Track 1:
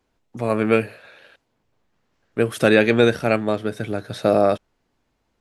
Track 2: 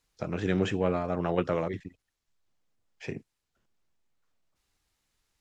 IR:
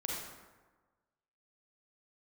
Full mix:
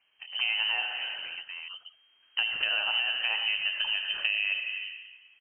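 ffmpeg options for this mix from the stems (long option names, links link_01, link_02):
-filter_complex "[0:a]alimiter=limit=-9.5dB:level=0:latency=1,volume=-3dB,asplit=3[link_01][link_02][link_03];[link_02]volume=-4dB[link_04];[link_03]volume=-9dB[link_05];[1:a]alimiter=level_in=0.5dB:limit=-24dB:level=0:latency=1:release=320,volume=-0.5dB,volume=-5.5dB[link_06];[2:a]atrim=start_sample=2205[link_07];[link_04][link_07]afir=irnorm=-1:irlink=0[link_08];[link_05]aecho=0:1:78:1[link_09];[link_01][link_06][link_08][link_09]amix=inputs=4:normalize=0,lowpass=frequency=2700:width_type=q:width=0.5098,lowpass=frequency=2700:width_type=q:width=0.6013,lowpass=frequency=2700:width_type=q:width=0.9,lowpass=frequency=2700:width_type=q:width=2.563,afreqshift=-3200,acompressor=threshold=-26dB:ratio=6"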